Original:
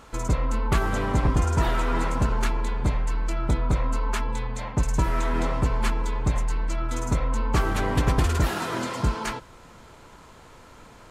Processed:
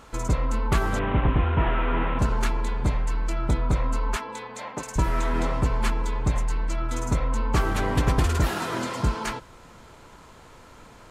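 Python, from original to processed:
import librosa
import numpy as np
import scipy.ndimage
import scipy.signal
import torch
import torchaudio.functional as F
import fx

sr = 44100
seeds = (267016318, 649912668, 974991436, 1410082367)

y = fx.delta_mod(x, sr, bps=16000, step_db=-29.5, at=(0.99, 2.19))
y = fx.highpass(y, sr, hz=310.0, slope=12, at=(4.16, 4.96))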